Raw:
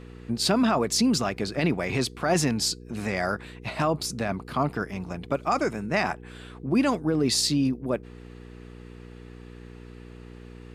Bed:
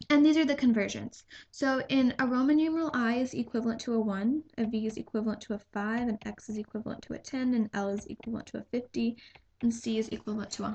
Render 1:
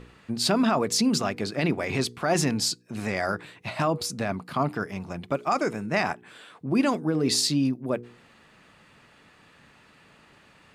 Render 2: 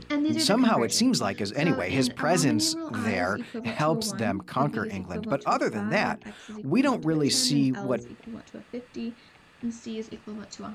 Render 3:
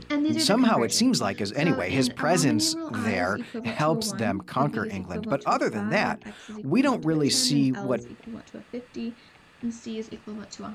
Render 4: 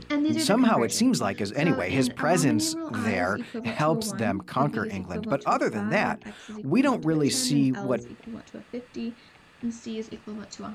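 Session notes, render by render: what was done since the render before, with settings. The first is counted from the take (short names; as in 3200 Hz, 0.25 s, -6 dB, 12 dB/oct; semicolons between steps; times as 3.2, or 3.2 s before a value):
de-hum 60 Hz, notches 8
add bed -4 dB
gain +1 dB
dynamic EQ 4800 Hz, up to -6 dB, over -40 dBFS, Q 1.6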